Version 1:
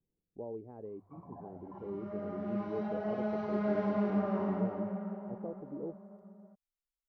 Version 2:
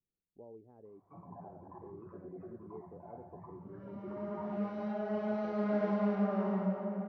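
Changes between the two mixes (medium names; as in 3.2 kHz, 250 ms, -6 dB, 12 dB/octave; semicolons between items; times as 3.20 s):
speech -10.0 dB; second sound: entry +2.05 s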